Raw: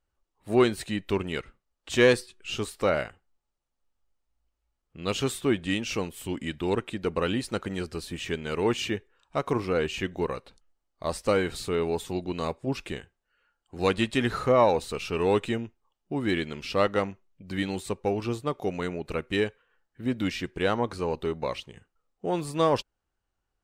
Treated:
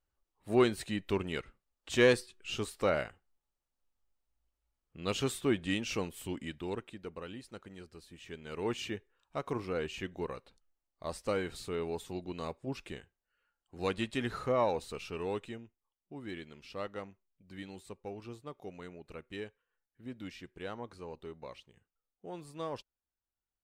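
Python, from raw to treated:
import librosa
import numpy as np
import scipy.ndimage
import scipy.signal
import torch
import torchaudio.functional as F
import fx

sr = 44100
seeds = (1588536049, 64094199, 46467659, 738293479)

y = fx.gain(x, sr, db=fx.line((6.2, -5.0), (7.27, -17.5), (8.17, -17.5), (8.69, -9.0), (14.97, -9.0), (15.62, -16.0)))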